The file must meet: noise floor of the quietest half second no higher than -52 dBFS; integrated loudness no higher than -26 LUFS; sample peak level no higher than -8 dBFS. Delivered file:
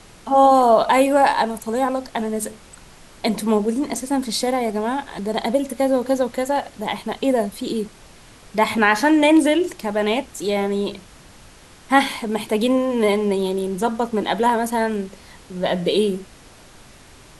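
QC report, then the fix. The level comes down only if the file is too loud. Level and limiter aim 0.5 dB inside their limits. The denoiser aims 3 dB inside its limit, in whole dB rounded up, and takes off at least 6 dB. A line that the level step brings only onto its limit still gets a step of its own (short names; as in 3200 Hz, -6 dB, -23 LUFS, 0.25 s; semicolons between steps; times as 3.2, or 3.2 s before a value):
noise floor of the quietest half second -46 dBFS: fail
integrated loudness -20.0 LUFS: fail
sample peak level -3.0 dBFS: fail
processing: gain -6.5 dB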